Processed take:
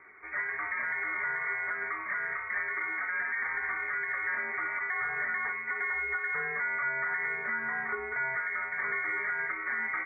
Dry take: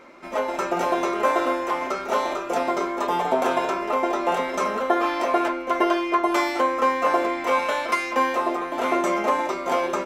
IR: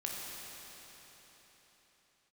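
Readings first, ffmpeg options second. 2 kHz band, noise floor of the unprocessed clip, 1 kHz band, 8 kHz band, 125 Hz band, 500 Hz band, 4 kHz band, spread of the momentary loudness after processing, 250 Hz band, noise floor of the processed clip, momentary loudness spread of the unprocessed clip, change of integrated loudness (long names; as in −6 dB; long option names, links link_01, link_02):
+1.5 dB, −32 dBFS, −15.5 dB, below −40 dB, below −10 dB, −22.5 dB, below −40 dB, 2 LU, −27.0 dB, −38 dBFS, 4 LU, −8.0 dB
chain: -af "lowpass=frequency=2100:width_type=q:width=0.5098,lowpass=frequency=2100:width_type=q:width=0.6013,lowpass=frequency=2100:width_type=q:width=0.9,lowpass=frequency=2100:width_type=q:width=2.563,afreqshift=-2500,alimiter=limit=-17.5dB:level=0:latency=1:release=105,volume=-6dB"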